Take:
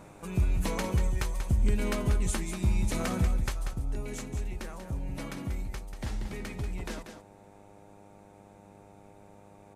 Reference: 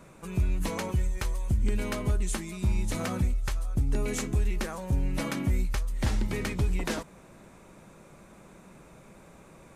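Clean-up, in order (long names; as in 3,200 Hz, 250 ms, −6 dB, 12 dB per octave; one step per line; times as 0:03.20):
hum removal 100.7 Hz, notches 9
echo removal 188 ms −8.5 dB
level 0 dB, from 0:03.73 +8 dB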